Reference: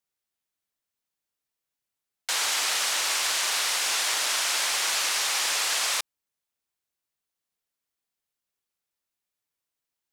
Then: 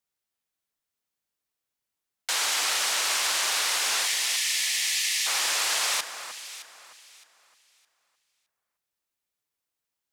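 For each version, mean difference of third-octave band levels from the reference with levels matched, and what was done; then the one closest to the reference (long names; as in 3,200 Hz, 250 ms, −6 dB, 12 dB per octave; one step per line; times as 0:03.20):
2.0 dB: gain on a spectral selection 0:04.06–0:05.26, 210–1,700 Hz −20 dB
delay that swaps between a low-pass and a high-pass 307 ms, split 1,900 Hz, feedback 51%, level −8 dB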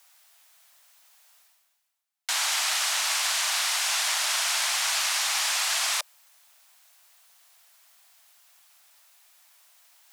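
5.0 dB: Butterworth high-pass 610 Hz 72 dB per octave
reversed playback
upward compression, threshold −36 dBFS
reversed playback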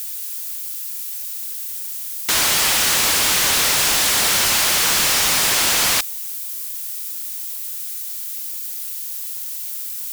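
7.0 dB: background noise violet −49 dBFS
in parallel at −7.5 dB: sine wavefolder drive 19 dB, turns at −12.5 dBFS
on the sum: level +4.5 dB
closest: first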